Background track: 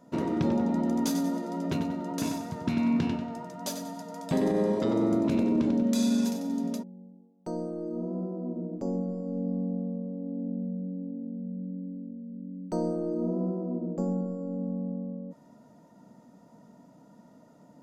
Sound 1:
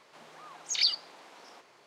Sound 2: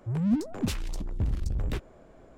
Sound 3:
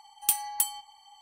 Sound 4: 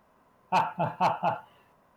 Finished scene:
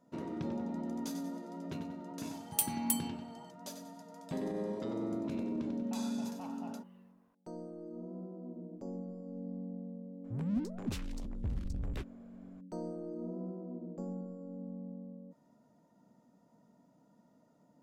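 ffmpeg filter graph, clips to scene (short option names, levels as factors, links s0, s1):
-filter_complex "[0:a]volume=0.266[s0];[4:a]acompressor=threshold=0.02:ratio=6:attack=3.2:release=140:knee=1:detection=peak[s1];[2:a]equalizer=f=12000:w=0.56:g=-2[s2];[3:a]atrim=end=1.21,asetpts=PTS-STARTPTS,volume=0.473,afade=t=in:d=0.004:c=hsin,afade=t=out:st=1.206:d=0.004:c=hsin,adelay=2300[s3];[s1]atrim=end=1.96,asetpts=PTS-STARTPTS,volume=0.237,afade=t=in:d=0.004:c=hsin,afade=t=out:st=1.956:d=0.004:c=hsin,adelay=5390[s4];[s2]atrim=end=2.37,asetpts=PTS-STARTPTS,volume=0.376,afade=t=in:d=0.004:c=hsin,afade=t=out:st=2.366:d=0.004:c=hsin,adelay=10240[s5];[s0][s3][s4][s5]amix=inputs=4:normalize=0"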